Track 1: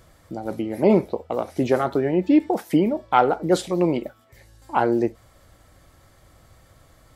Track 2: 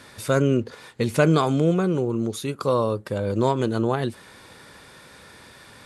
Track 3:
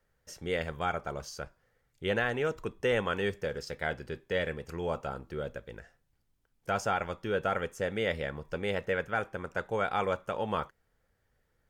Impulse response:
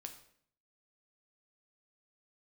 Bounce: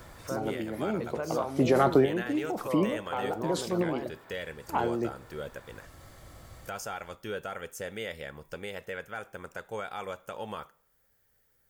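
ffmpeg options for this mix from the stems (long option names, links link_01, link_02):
-filter_complex "[0:a]alimiter=limit=-12dB:level=0:latency=1:release=15,acrossover=split=180|3000[link_01][link_02][link_03];[link_02]acompressor=threshold=-20dB:ratio=6[link_04];[link_01][link_04][link_03]amix=inputs=3:normalize=0,volume=2.5dB,asplit=2[link_05][link_06];[link_06]volume=-14.5dB[link_07];[1:a]bandpass=frequency=860:width_type=q:width=1.1:csg=0,volume=-4dB,asplit=2[link_08][link_09];[link_09]volume=-10.5dB[link_10];[2:a]aemphasis=mode=production:type=bsi,volume=-1dB,asplit=3[link_11][link_12][link_13];[link_12]volume=-15.5dB[link_14];[link_13]apad=whole_len=315393[link_15];[link_05][link_15]sidechaincompress=threshold=-45dB:ratio=4:attack=16:release=444[link_16];[link_08][link_11]amix=inputs=2:normalize=0,lowshelf=frequency=140:gain=12,alimiter=level_in=3dB:limit=-24dB:level=0:latency=1:release=404,volume=-3dB,volume=0dB[link_17];[3:a]atrim=start_sample=2205[link_18];[link_07][link_10][link_14]amix=inputs=3:normalize=0[link_19];[link_19][link_18]afir=irnorm=-1:irlink=0[link_20];[link_16][link_17][link_20]amix=inputs=3:normalize=0"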